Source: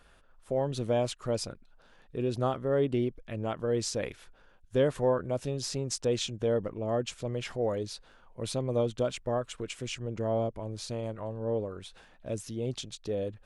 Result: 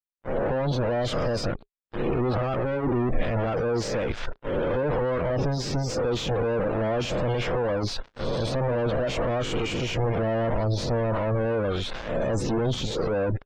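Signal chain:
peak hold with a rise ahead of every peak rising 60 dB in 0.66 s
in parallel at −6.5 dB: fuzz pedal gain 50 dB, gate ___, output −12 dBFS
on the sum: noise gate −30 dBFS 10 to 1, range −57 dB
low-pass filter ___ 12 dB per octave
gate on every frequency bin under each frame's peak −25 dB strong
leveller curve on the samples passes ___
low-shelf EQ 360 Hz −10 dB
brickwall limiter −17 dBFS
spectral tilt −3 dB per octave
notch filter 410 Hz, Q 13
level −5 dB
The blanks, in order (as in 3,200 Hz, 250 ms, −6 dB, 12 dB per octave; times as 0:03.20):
−50 dBFS, 6,600 Hz, 1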